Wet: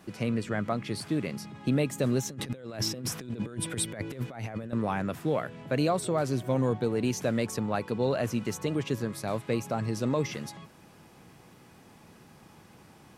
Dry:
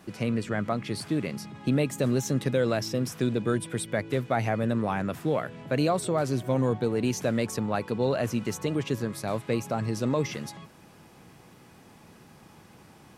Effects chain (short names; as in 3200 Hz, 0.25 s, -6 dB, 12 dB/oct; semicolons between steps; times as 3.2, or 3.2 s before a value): 2.29–4.73 negative-ratio compressor -32 dBFS, ratio -0.5; gain -1.5 dB